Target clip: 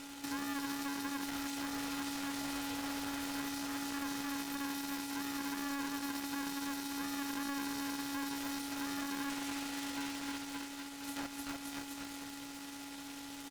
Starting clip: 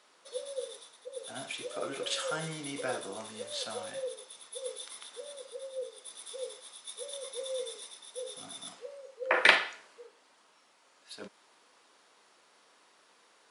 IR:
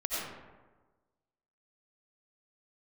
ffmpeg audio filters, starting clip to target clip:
-filter_complex "[0:a]asplit=2[s0][s1];[s1]highpass=f=720:p=1,volume=56.2,asoftclip=type=tanh:threshold=0.668[s2];[s0][s2]amix=inputs=2:normalize=0,lowpass=f=2600:p=1,volume=0.501,acompressor=threshold=0.1:ratio=12,asplit=2[s3][s4];[s4]aecho=0:1:300|570|813|1032|1229:0.631|0.398|0.251|0.158|0.1[s5];[s3][s5]amix=inputs=2:normalize=0,asoftclip=type=hard:threshold=0.0668,aecho=1:1:77|154|231|308:0.224|0.0895|0.0358|0.0143,asplit=2[s6][s7];[1:a]atrim=start_sample=2205,afade=t=out:st=0.21:d=0.01,atrim=end_sample=9702,adelay=124[s8];[s7][s8]afir=irnorm=-1:irlink=0,volume=0.0473[s9];[s6][s9]amix=inputs=2:normalize=0,acrossover=split=560|2300[s10][s11][s12];[s10]acompressor=threshold=0.0282:ratio=4[s13];[s11]acompressor=threshold=0.00891:ratio=4[s14];[s12]acompressor=threshold=0.0178:ratio=4[s15];[s13][s14][s15]amix=inputs=3:normalize=0,asetrate=58866,aresample=44100,atempo=0.749154,aeval=exprs='abs(val(0))':c=same,aresample=32000,aresample=44100,aeval=exprs='val(0)*sgn(sin(2*PI*280*n/s))':c=same,volume=0.398"

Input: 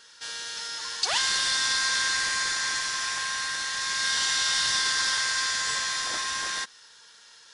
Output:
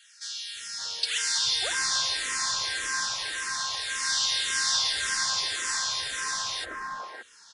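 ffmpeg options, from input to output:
-filter_complex "[0:a]acrossover=split=220|1700[s0][s1][s2];[s0]adelay=340[s3];[s1]adelay=570[s4];[s3][s4][s2]amix=inputs=3:normalize=0,asplit=2[s5][s6];[s6]afreqshift=-1.8[s7];[s5][s7]amix=inputs=2:normalize=1,volume=1.33"

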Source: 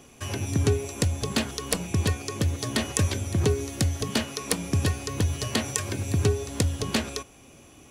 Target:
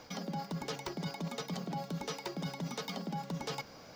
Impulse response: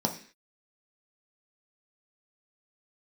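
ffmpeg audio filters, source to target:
-af "areverse,acompressor=threshold=0.02:ratio=10,areverse,asetrate=88200,aresample=44100,highshelf=f=7300:t=q:w=1.5:g=-13.5,bandreject=f=65.95:t=h:w=4,bandreject=f=131.9:t=h:w=4,bandreject=f=197.85:t=h:w=4,bandreject=f=263.8:t=h:w=4,bandreject=f=329.75:t=h:w=4,bandreject=f=395.7:t=h:w=4,bandreject=f=461.65:t=h:w=4,bandreject=f=527.6:t=h:w=4,volume=0.891"

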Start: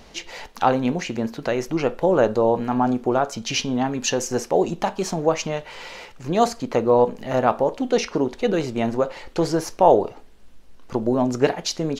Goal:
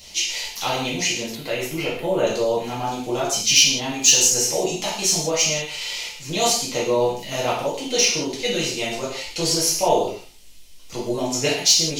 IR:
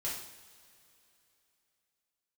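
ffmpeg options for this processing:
-filter_complex "[1:a]atrim=start_sample=2205,afade=t=out:st=0.25:d=0.01,atrim=end_sample=11466[s0];[0:a][s0]afir=irnorm=-1:irlink=0,aexciter=amount=4.2:drive=8.6:freq=2200,asettb=1/sr,asplit=3[s1][s2][s3];[s1]atrim=end=1.354[s4];[s2]atrim=start=1.35:end=2.27,asetpts=PTS-STARTPTS,afade=t=in:d=0.004:c=qsin,afade=t=out:st=0.916:d=0.004:c=qsin,equalizer=f=5700:t=o:w=0.79:g=-15[s5];[s3]atrim=start=2.266[s6];[s4][s5]acrossfade=d=0.004:c1=hsin:c2=qsin[s7];[s7][s6]acrossfade=d=0.004:c1=qsin:c2=hsin,volume=0.501"

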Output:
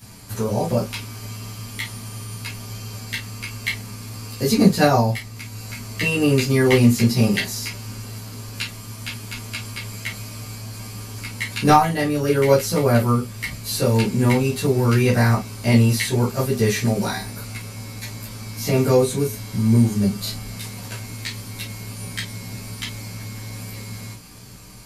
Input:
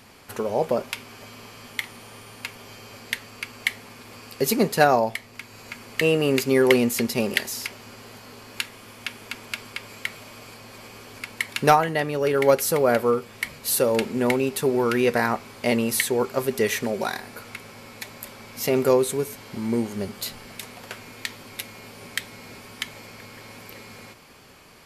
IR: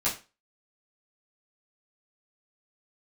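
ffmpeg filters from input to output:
-filter_complex "[0:a]acrossover=split=5000[s0][s1];[s1]acompressor=threshold=0.00794:ratio=4:attack=1:release=60[s2];[s0][s2]amix=inputs=2:normalize=0,bass=f=250:g=15,treble=f=4000:g=14[s3];[1:a]atrim=start_sample=2205,atrim=end_sample=3087[s4];[s3][s4]afir=irnorm=-1:irlink=0,volume=0.355"

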